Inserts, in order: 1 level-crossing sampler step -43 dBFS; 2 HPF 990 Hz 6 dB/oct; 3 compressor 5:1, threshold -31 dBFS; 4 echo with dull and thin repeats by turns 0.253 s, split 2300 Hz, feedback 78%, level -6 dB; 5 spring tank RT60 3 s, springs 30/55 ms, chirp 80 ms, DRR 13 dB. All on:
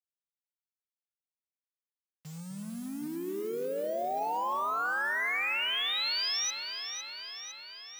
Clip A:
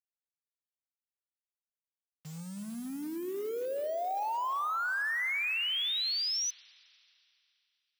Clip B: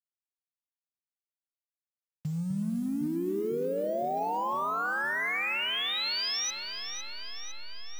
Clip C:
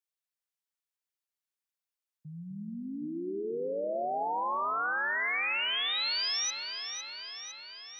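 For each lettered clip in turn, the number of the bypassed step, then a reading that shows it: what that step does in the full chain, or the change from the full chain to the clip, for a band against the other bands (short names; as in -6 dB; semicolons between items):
4, echo-to-direct -3.5 dB to -13.0 dB; 2, 125 Hz band +10.5 dB; 1, distortion -22 dB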